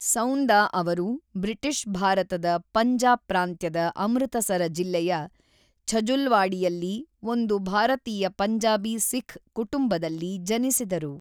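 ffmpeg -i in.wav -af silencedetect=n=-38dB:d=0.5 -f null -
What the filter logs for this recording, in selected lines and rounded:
silence_start: 5.26
silence_end: 5.88 | silence_duration: 0.61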